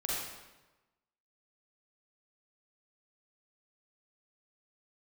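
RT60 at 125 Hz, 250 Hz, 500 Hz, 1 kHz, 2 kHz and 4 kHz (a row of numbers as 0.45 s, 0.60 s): 1.2 s, 1.1 s, 1.1 s, 1.1 s, 1.0 s, 0.90 s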